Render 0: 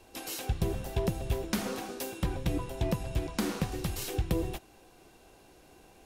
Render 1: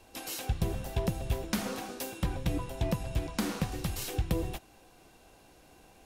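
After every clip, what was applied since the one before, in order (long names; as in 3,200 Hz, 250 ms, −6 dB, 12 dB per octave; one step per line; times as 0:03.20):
parametric band 380 Hz −5 dB 0.39 octaves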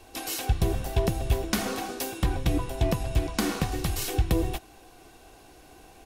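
comb filter 2.7 ms, depth 34%
level +5.5 dB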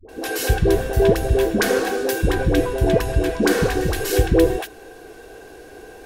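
hollow resonant body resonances 450/1,600 Hz, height 15 dB, ringing for 25 ms
all-pass dispersion highs, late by 89 ms, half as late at 550 Hz
level +5 dB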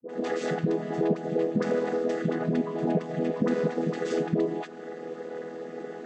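channel vocoder with a chord as carrier major triad, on E3
downward compressor 2.5 to 1, threshold −32 dBFS, peak gain reduction 14.5 dB
level +3.5 dB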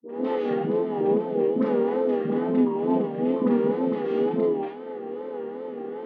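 loudspeaker in its box 220–3,000 Hz, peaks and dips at 270 Hz +7 dB, 650 Hz −6 dB, 930 Hz +6 dB, 1,600 Hz −8 dB, 2,400 Hz −5 dB
four-comb reverb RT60 0.41 s, combs from 28 ms, DRR −3 dB
tape wow and flutter 89 cents
level −2 dB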